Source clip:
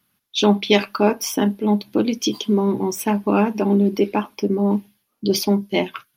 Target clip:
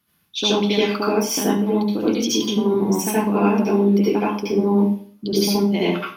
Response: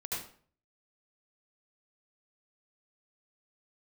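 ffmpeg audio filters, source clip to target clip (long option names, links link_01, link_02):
-filter_complex "[0:a]acompressor=threshold=-19dB:ratio=6[link_01];[1:a]atrim=start_sample=2205[link_02];[link_01][link_02]afir=irnorm=-1:irlink=0,volume=2.5dB"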